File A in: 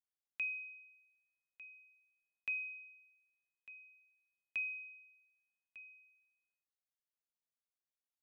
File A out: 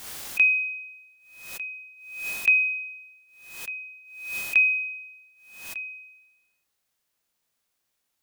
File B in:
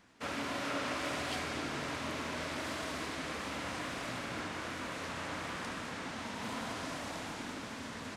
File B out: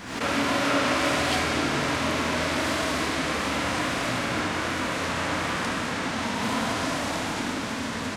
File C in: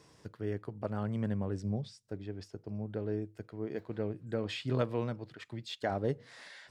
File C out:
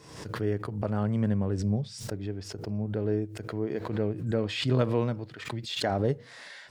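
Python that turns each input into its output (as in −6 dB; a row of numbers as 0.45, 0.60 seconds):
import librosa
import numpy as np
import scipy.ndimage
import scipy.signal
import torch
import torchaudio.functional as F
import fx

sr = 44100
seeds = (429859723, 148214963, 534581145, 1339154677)

y = fx.hpss(x, sr, part='percussive', gain_db=-4)
y = fx.pre_swell(y, sr, db_per_s=66.0)
y = librosa.util.normalize(y) * 10.0 ** (-12 / 20.0)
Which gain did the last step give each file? +19.5, +14.0, +7.0 decibels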